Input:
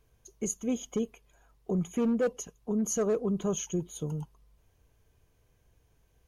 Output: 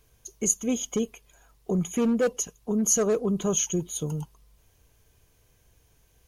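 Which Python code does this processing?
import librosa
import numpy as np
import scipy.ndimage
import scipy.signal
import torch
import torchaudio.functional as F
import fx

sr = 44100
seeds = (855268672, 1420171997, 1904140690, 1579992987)

y = fx.high_shelf(x, sr, hz=2600.0, db=8.5)
y = y * librosa.db_to_amplitude(3.5)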